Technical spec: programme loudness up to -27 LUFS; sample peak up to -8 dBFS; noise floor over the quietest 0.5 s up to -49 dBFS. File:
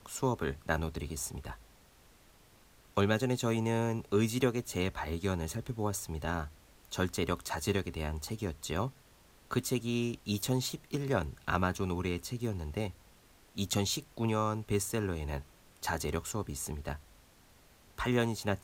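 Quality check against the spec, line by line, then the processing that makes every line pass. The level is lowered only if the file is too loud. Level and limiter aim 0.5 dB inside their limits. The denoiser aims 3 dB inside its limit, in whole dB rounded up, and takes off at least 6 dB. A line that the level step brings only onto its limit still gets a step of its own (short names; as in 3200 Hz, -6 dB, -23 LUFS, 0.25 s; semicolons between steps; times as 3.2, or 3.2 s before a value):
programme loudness -34.0 LUFS: OK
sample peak -13.5 dBFS: OK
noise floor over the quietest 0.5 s -61 dBFS: OK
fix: none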